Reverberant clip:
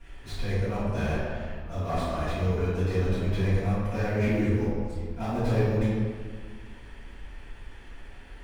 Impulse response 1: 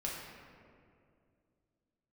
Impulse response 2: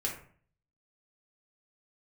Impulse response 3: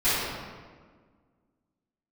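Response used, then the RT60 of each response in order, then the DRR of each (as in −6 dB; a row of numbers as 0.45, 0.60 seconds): 3; 2.4, 0.50, 1.6 seconds; −4.5, −2.5, −17.5 decibels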